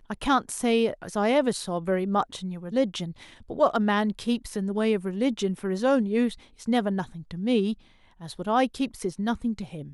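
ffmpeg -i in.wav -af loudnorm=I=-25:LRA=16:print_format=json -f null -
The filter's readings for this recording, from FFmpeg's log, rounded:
"input_i" : "-26.7",
"input_tp" : "-9.9",
"input_lra" : "2.9",
"input_thresh" : "-37.3",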